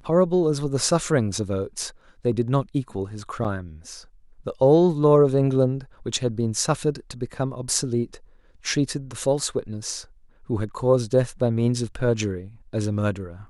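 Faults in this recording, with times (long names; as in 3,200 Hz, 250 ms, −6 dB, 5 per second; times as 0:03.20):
0:03.44–0:03.45: drop-out 6.9 ms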